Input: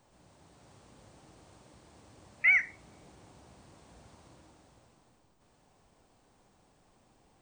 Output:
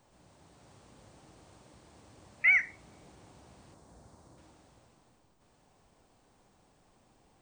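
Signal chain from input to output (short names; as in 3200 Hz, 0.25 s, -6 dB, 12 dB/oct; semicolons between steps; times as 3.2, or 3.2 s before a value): 3.74–4.38 bell 2700 Hz -11 dB 1.2 oct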